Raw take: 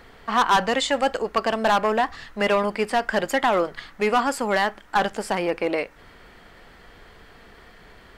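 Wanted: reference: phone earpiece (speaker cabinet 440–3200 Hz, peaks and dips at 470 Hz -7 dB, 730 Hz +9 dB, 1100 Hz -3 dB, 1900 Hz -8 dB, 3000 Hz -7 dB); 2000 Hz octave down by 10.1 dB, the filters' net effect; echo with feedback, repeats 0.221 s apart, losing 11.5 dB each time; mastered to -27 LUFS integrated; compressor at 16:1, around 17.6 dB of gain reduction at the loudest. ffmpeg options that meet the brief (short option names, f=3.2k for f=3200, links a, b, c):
-af "equalizer=f=2k:t=o:g=-8,acompressor=threshold=-35dB:ratio=16,highpass=440,equalizer=f=470:t=q:w=4:g=-7,equalizer=f=730:t=q:w=4:g=9,equalizer=f=1.1k:t=q:w=4:g=-3,equalizer=f=1.9k:t=q:w=4:g=-8,equalizer=f=3k:t=q:w=4:g=-7,lowpass=f=3.2k:w=0.5412,lowpass=f=3.2k:w=1.3066,aecho=1:1:221|442|663:0.266|0.0718|0.0194,volume=13dB"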